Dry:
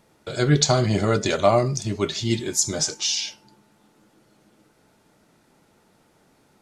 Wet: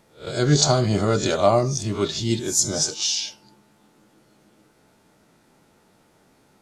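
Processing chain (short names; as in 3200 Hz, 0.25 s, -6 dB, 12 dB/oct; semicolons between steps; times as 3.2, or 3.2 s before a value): spectral swells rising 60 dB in 0.31 s; dynamic EQ 2100 Hz, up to -6 dB, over -42 dBFS, Q 1.7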